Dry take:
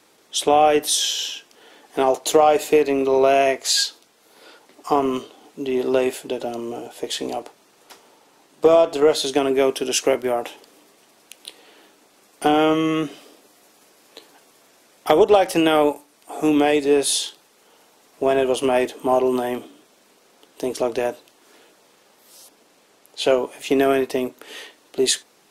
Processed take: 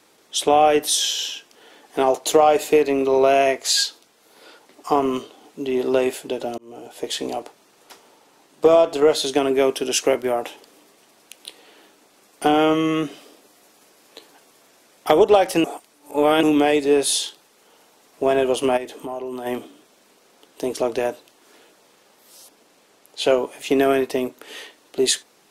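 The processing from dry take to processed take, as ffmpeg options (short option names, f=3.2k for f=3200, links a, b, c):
-filter_complex "[0:a]asplit=3[a][b][c];[a]afade=t=out:st=18.76:d=0.02[d];[b]acompressor=threshold=-30dB:ratio=3:attack=3.2:release=140:knee=1:detection=peak,afade=t=in:st=18.76:d=0.02,afade=t=out:st=19.45:d=0.02[e];[c]afade=t=in:st=19.45:d=0.02[f];[d][e][f]amix=inputs=3:normalize=0,asplit=4[g][h][i][j];[g]atrim=end=6.58,asetpts=PTS-STARTPTS,afade=t=out:st=6.576:d=0.004:c=hsin[k];[h]atrim=start=6.58:end=15.642,asetpts=PTS-STARTPTS,afade=t=in:d=0.42[l];[i]atrim=start=15.638:end=16.432,asetpts=PTS-STARTPTS,areverse[m];[j]atrim=start=16.428[n];[k][l]concat=n=2:v=0:a=1[o];[o][m]acrossfade=d=0.004:c1=hsin:c2=hsin[p];[p][n]acrossfade=d=0.004:c1=hsin:c2=hsin"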